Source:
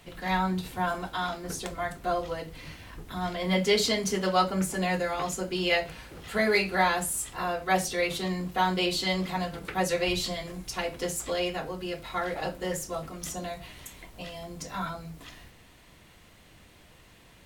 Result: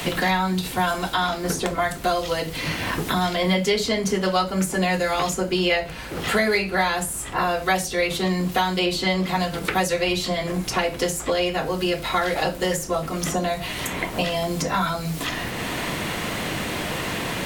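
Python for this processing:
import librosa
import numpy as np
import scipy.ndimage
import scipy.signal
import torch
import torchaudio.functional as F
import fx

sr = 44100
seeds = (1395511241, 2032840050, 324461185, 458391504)

y = fx.band_squash(x, sr, depth_pct=100)
y = F.gain(torch.from_numpy(y), 6.0).numpy()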